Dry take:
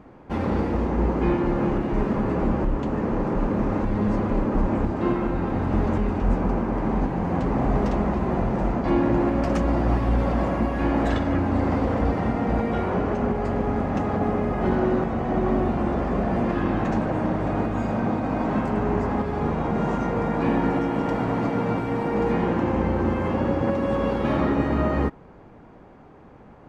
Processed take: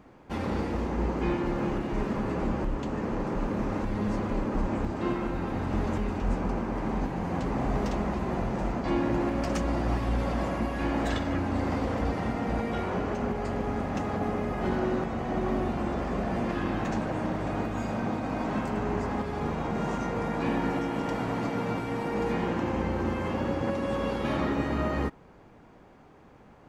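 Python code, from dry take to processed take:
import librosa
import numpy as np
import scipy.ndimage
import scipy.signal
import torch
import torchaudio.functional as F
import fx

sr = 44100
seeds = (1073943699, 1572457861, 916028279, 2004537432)

y = fx.high_shelf(x, sr, hz=2700.0, db=11.5)
y = y * 10.0 ** (-6.5 / 20.0)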